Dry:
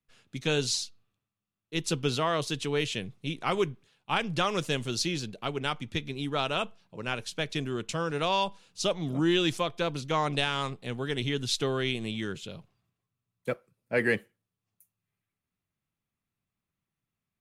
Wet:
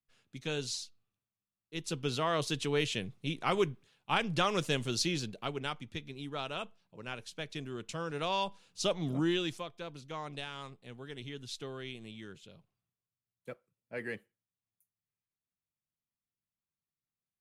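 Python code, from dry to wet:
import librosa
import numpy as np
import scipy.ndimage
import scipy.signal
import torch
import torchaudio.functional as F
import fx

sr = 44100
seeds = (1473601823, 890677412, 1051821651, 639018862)

y = fx.gain(x, sr, db=fx.line((1.81, -8.5), (2.43, -2.0), (5.25, -2.0), (5.96, -9.0), (7.61, -9.0), (9.11, -2.0), (9.72, -13.5)))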